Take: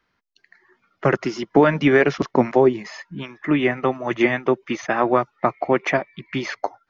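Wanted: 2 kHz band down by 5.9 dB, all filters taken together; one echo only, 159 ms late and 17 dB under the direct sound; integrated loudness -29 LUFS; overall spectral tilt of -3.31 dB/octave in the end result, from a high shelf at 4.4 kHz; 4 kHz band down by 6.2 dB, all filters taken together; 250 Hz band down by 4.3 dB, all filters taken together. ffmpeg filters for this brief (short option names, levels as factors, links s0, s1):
-af "equalizer=f=250:t=o:g=-5.5,equalizer=f=2000:t=o:g=-5.5,equalizer=f=4000:t=o:g=-4.5,highshelf=f=4400:g=-3.5,aecho=1:1:159:0.141,volume=0.501"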